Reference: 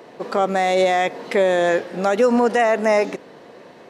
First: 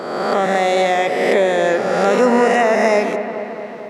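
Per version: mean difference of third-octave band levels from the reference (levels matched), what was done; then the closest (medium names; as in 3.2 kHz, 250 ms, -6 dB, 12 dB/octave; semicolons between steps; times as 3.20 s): 5.0 dB: reverse spectral sustain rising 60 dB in 1.52 s; on a send: feedback echo behind a low-pass 222 ms, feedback 67%, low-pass 2.1 kHz, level -9 dB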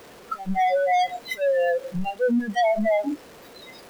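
9.5 dB: one-bit comparator; spectral noise reduction 29 dB; trim +2 dB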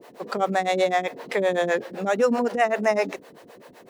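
4.0 dB: bit crusher 9-bit; harmonic tremolo 7.8 Hz, depth 100%, crossover 410 Hz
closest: third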